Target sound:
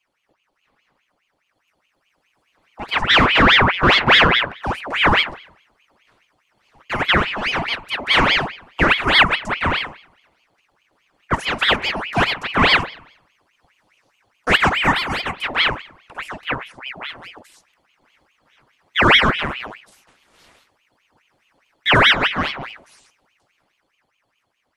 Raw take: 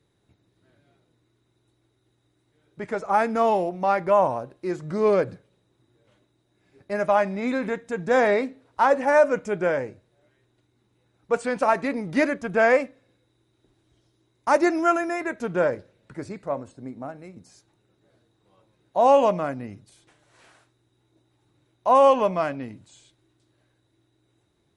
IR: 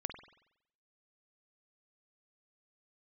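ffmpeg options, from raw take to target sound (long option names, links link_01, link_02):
-filter_complex "[0:a]asplit=3[link_01][link_02][link_03];[link_01]afade=type=out:start_time=2.95:duration=0.02[link_04];[link_02]asplit=2[link_05][link_06];[link_06]highpass=frequency=720:poles=1,volume=22dB,asoftclip=type=tanh:threshold=-8dB[link_07];[link_05][link_07]amix=inputs=2:normalize=0,lowpass=frequency=1000:poles=1,volume=-6dB,afade=type=in:start_time=2.95:duration=0.02,afade=type=out:start_time=4.54:duration=0.02[link_08];[link_03]afade=type=in:start_time=4.54:duration=0.02[link_09];[link_04][link_08][link_09]amix=inputs=3:normalize=0,dynaudnorm=framelen=450:gausssize=9:maxgain=11.5dB,asplit=2[link_10][link_11];[1:a]atrim=start_sample=2205[link_12];[link_11][link_12]afir=irnorm=-1:irlink=0,volume=-5.5dB[link_13];[link_10][link_13]amix=inputs=2:normalize=0,aeval=exprs='val(0)*sin(2*PI*1600*n/s+1600*0.75/4.8*sin(2*PI*4.8*n/s))':channel_layout=same,volume=-3.5dB"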